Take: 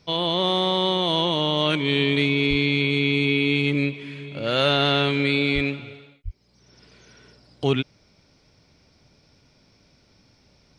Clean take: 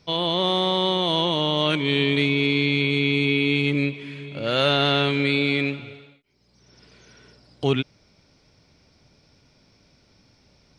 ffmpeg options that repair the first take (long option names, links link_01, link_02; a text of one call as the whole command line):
ffmpeg -i in.wav -filter_complex "[0:a]asplit=3[link_01][link_02][link_03];[link_01]afade=type=out:start_time=2.49:duration=0.02[link_04];[link_02]highpass=frequency=140:width=0.5412,highpass=frequency=140:width=1.3066,afade=type=in:start_time=2.49:duration=0.02,afade=type=out:start_time=2.61:duration=0.02[link_05];[link_03]afade=type=in:start_time=2.61:duration=0.02[link_06];[link_04][link_05][link_06]amix=inputs=3:normalize=0,asplit=3[link_07][link_08][link_09];[link_07]afade=type=out:start_time=5.54:duration=0.02[link_10];[link_08]highpass=frequency=140:width=0.5412,highpass=frequency=140:width=1.3066,afade=type=in:start_time=5.54:duration=0.02,afade=type=out:start_time=5.66:duration=0.02[link_11];[link_09]afade=type=in:start_time=5.66:duration=0.02[link_12];[link_10][link_11][link_12]amix=inputs=3:normalize=0,asplit=3[link_13][link_14][link_15];[link_13]afade=type=out:start_time=6.24:duration=0.02[link_16];[link_14]highpass=frequency=140:width=0.5412,highpass=frequency=140:width=1.3066,afade=type=in:start_time=6.24:duration=0.02,afade=type=out:start_time=6.36:duration=0.02[link_17];[link_15]afade=type=in:start_time=6.36:duration=0.02[link_18];[link_16][link_17][link_18]amix=inputs=3:normalize=0" out.wav